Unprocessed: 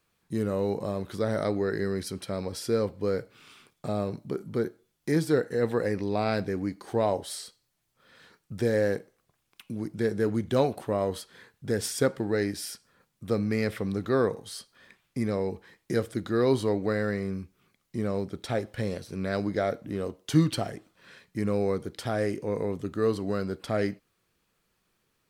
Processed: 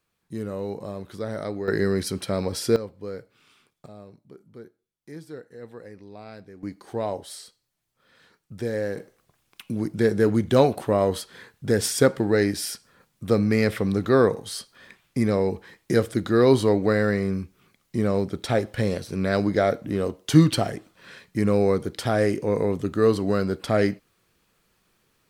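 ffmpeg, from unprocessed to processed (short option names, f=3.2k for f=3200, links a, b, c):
-af "asetnsamples=n=441:p=0,asendcmd='1.68 volume volume 6.5dB;2.76 volume volume -6.5dB;3.86 volume volume -15dB;6.63 volume volume -2.5dB;8.97 volume volume 6.5dB',volume=-3dB"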